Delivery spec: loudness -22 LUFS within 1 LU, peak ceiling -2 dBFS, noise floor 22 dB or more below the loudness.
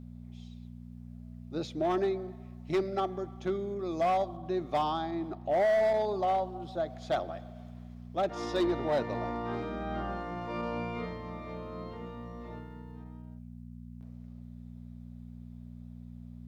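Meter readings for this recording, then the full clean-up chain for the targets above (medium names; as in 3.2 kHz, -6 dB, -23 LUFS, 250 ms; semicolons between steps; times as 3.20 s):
clipped samples 1.3%; clipping level -23.0 dBFS; hum 60 Hz; highest harmonic 240 Hz; hum level -44 dBFS; loudness -32.5 LUFS; peak level -23.0 dBFS; loudness target -22.0 LUFS
-> clip repair -23 dBFS; de-hum 60 Hz, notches 4; trim +10.5 dB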